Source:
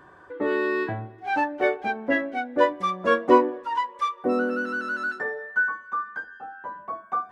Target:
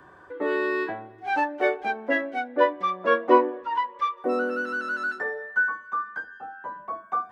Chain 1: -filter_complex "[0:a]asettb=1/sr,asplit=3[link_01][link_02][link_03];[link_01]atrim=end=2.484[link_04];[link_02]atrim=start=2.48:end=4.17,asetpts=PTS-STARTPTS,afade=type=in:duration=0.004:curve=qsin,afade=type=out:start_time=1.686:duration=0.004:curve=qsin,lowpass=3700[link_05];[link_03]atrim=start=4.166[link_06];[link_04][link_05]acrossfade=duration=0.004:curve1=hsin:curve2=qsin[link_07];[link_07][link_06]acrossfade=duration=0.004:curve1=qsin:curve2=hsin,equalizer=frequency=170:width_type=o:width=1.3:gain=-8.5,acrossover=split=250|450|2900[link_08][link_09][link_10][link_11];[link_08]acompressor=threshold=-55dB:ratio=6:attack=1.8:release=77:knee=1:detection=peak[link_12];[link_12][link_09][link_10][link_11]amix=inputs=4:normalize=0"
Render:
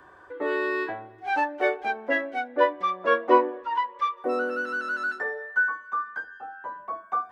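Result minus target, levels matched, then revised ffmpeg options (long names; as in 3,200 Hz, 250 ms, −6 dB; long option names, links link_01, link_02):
125 Hz band −3.0 dB
-filter_complex "[0:a]asettb=1/sr,asplit=3[link_01][link_02][link_03];[link_01]atrim=end=2.484[link_04];[link_02]atrim=start=2.48:end=4.17,asetpts=PTS-STARTPTS,afade=type=in:duration=0.004:curve=qsin,afade=type=out:start_time=1.686:duration=0.004:curve=qsin,lowpass=3700[link_05];[link_03]atrim=start=4.166[link_06];[link_04][link_05]acrossfade=duration=0.004:curve1=hsin:curve2=qsin[link_07];[link_07][link_06]acrossfade=duration=0.004:curve1=qsin:curve2=hsin,acrossover=split=250|450|2900[link_08][link_09][link_10][link_11];[link_08]acompressor=threshold=-55dB:ratio=6:attack=1.8:release=77:knee=1:detection=peak[link_12];[link_12][link_09][link_10][link_11]amix=inputs=4:normalize=0"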